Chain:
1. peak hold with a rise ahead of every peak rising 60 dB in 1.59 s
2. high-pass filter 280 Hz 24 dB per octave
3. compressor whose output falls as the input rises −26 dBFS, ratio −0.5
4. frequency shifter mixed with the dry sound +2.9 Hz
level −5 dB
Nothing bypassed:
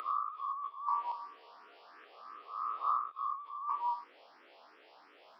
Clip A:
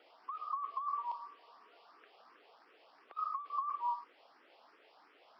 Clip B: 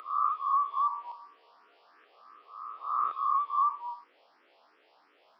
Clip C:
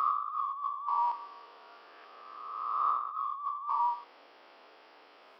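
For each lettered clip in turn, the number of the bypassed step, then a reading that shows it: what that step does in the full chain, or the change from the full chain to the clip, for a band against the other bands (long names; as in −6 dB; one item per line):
1, change in momentary loudness spread −12 LU
3, change in momentary loudness spread −4 LU
4, change in crest factor −2.0 dB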